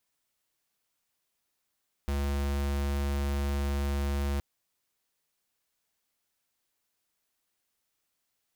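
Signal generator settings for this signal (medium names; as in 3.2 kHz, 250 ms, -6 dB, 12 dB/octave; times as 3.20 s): tone square 70.4 Hz -29.5 dBFS 2.32 s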